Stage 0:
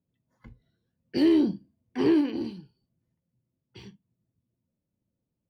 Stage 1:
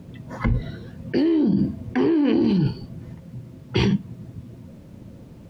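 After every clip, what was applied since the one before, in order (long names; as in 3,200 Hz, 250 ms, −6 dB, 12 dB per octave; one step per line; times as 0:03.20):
low-pass filter 2,100 Hz 6 dB per octave
envelope flattener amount 100%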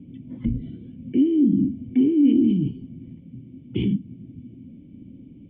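dynamic equaliser 1,300 Hz, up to −7 dB, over −43 dBFS, Q 0.91
formant resonators in series i
level +6 dB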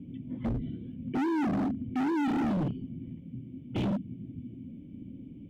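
hard clipping −26 dBFS, distortion −5 dB
level −1 dB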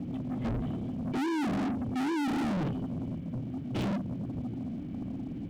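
leveller curve on the samples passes 3
level −2 dB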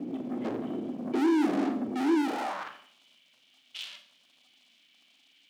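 high-pass filter sweep 340 Hz → 3,200 Hz, 0:02.22–0:02.93
four-comb reverb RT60 0.49 s, combs from 29 ms, DRR 7.5 dB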